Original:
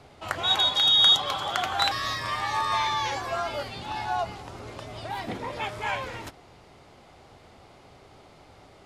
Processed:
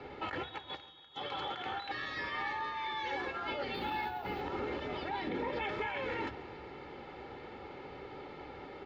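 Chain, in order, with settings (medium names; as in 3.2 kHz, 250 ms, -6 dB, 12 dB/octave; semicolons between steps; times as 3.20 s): dynamic bell 1.1 kHz, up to -4 dB, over -39 dBFS, Q 0.85; compressor with a negative ratio -36 dBFS, ratio -1; peak limiter -27.5 dBFS, peak gain reduction 10 dB; 3.74–4.41 s: careless resampling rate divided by 3×, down filtered, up zero stuff; distance through air 230 m; feedback delay 140 ms, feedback 58%, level -20 dB; reverberation RT60 1.1 s, pre-delay 3 ms, DRR 19 dB; trim -6 dB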